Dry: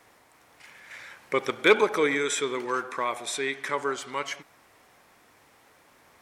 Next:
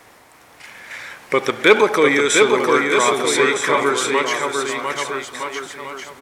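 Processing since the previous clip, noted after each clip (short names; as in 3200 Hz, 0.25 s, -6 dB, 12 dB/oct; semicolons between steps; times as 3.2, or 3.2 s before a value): in parallel at -1 dB: limiter -19 dBFS, peak gain reduction 10.5 dB; on the sum: bouncing-ball echo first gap 0.7 s, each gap 0.8×, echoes 5; gain +5 dB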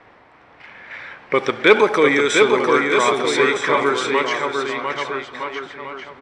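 low-pass opened by the level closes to 2700 Hz, open at -10 dBFS; air absorption 60 m; notch 6700 Hz, Q 12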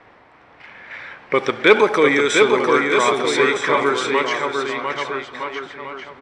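nothing audible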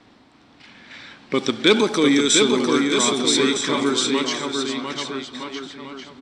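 ten-band EQ 250 Hz +11 dB, 500 Hz -7 dB, 1000 Hz -4 dB, 2000 Hz -8 dB, 4000 Hz +9 dB, 8000 Hz +10 dB; gain -2 dB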